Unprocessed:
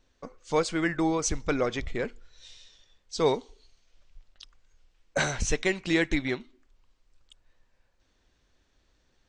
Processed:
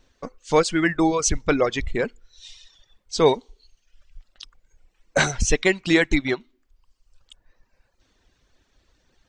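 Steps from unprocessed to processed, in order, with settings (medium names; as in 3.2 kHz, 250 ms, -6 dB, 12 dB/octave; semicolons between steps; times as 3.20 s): reverb removal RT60 0.96 s; trim +7.5 dB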